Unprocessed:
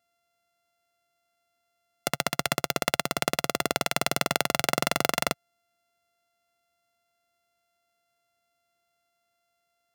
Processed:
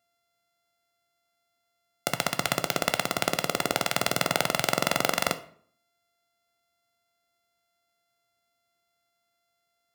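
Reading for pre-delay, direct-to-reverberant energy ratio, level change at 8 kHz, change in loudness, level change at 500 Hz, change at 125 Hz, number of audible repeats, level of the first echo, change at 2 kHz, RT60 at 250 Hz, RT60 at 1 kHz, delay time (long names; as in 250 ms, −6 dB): 11 ms, 10.0 dB, 0.0 dB, +0.5 dB, +0.5 dB, 0.0 dB, no echo audible, no echo audible, +0.5 dB, 0.65 s, 0.55 s, no echo audible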